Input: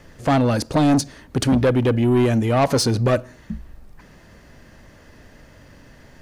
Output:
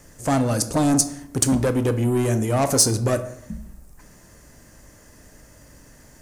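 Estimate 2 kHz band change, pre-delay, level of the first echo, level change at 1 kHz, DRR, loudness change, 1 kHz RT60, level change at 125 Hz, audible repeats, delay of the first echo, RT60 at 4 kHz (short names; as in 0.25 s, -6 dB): -4.5 dB, 3 ms, none, -3.5 dB, 9.0 dB, -1.5 dB, 0.75 s, -2.5 dB, none, none, 0.50 s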